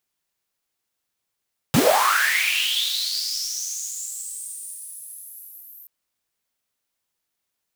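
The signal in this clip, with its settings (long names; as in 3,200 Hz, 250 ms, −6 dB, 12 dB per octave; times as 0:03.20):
filter sweep on noise pink, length 4.13 s highpass, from 110 Hz, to 13,000 Hz, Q 8, linear, gain ramp −24 dB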